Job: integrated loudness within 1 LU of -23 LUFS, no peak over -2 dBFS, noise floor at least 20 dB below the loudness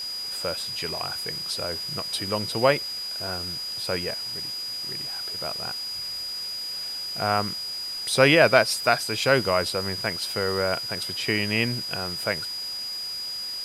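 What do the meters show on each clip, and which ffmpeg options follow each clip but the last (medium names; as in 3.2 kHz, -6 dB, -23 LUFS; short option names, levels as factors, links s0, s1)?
steady tone 4.9 kHz; tone level -30 dBFS; noise floor -33 dBFS; noise floor target -45 dBFS; loudness -25.0 LUFS; peak level -3.0 dBFS; loudness target -23.0 LUFS
-> -af "bandreject=f=4900:w=30"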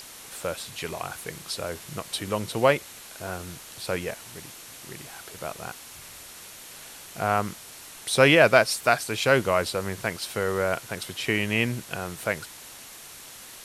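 steady tone not found; noise floor -45 dBFS; noise floor target -46 dBFS
-> -af "afftdn=nr=6:nf=-45"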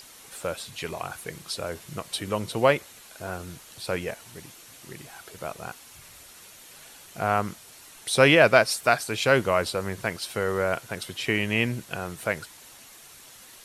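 noise floor -49 dBFS; loudness -25.5 LUFS; peak level -3.0 dBFS; loudness target -23.0 LUFS
-> -af "volume=1.33,alimiter=limit=0.794:level=0:latency=1"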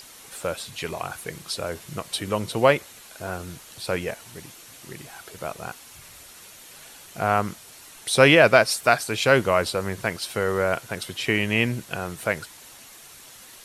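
loudness -23.0 LUFS; peak level -2.0 dBFS; noise floor -47 dBFS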